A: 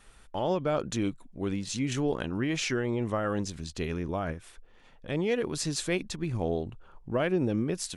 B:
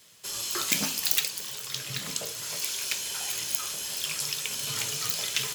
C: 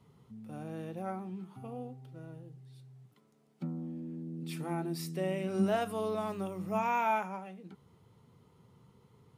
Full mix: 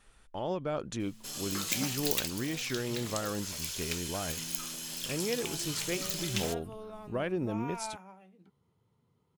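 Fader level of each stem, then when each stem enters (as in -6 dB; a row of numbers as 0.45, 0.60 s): -5.5, -6.5, -11.0 dB; 0.00, 1.00, 0.75 s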